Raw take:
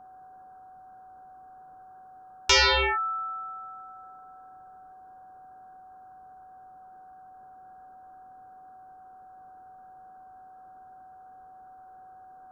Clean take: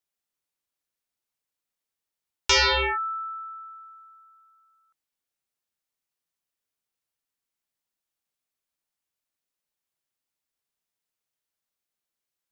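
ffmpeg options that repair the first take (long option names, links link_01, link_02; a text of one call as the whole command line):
ffmpeg -i in.wav -af "bandreject=frequency=750:width=30,afwtdn=0.0025" out.wav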